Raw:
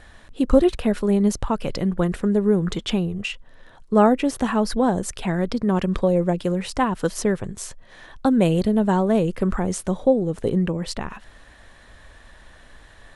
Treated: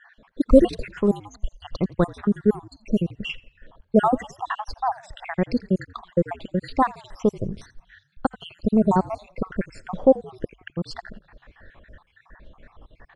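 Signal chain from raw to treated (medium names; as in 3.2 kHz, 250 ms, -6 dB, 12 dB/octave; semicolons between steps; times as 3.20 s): random holes in the spectrogram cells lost 67%; frequency-shifting echo 85 ms, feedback 50%, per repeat -50 Hz, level -21.5 dB; level-controlled noise filter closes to 1.9 kHz, open at -15.5 dBFS; trim +2.5 dB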